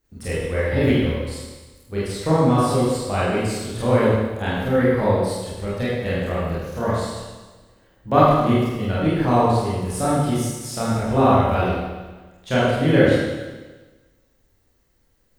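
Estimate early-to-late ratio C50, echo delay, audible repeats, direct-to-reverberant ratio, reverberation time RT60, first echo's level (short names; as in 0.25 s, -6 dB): -2.0 dB, none, none, -9.5 dB, 1.3 s, none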